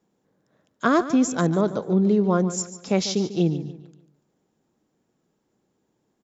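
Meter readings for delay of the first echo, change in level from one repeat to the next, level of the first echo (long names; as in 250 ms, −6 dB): 145 ms, −8.5 dB, −13.5 dB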